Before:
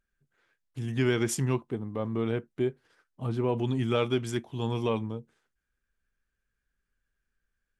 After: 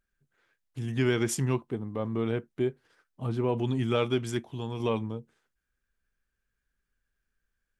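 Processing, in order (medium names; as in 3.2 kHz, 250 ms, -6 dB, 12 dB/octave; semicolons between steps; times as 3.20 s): 4.39–4.80 s: compression 2:1, threshold -34 dBFS, peak gain reduction 5.5 dB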